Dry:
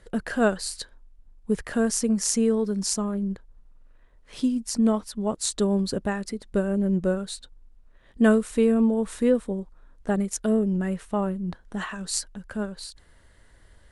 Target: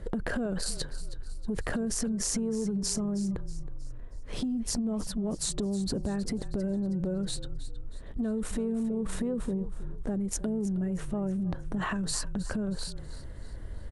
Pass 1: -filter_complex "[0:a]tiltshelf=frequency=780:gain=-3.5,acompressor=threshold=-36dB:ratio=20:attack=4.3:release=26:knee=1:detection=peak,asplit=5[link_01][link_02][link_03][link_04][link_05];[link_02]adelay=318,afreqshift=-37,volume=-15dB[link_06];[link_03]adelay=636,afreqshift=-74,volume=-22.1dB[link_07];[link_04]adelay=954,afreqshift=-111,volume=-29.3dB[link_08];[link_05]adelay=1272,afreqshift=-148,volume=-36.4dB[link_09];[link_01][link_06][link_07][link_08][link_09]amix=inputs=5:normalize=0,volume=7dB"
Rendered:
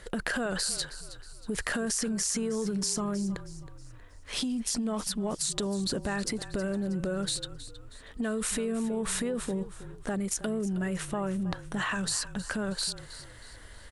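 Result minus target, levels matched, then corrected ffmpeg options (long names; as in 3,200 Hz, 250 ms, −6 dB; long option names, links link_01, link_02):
1,000 Hz band +4.0 dB
-filter_complex "[0:a]tiltshelf=frequency=780:gain=8,acompressor=threshold=-36dB:ratio=20:attack=4.3:release=26:knee=1:detection=peak,asplit=5[link_01][link_02][link_03][link_04][link_05];[link_02]adelay=318,afreqshift=-37,volume=-15dB[link_06];[link_03]adelay=636,afreqshift=-74,volume=-22.1dB[link_07];[link_04]adelay=954,afreqshift=-111,volume=-29.3dB[link_08];[link_05]adelay=1272,afreqshift=-148,volume=-36.4dB[link_09];[link_01][link_06][link_07][link_08][link_09]amix=inputs=5:normalize=0,volume=7dB"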